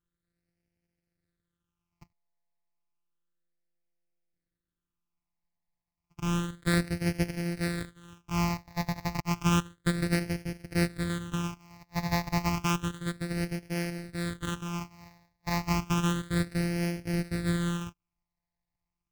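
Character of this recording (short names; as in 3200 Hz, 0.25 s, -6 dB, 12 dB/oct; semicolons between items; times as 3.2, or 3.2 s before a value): a buzz of ramps at a fixed pitch in blocks of 256 samples; phasing stages 8, 0.31 Hz, lowest notch 410–1100 Hz; AAC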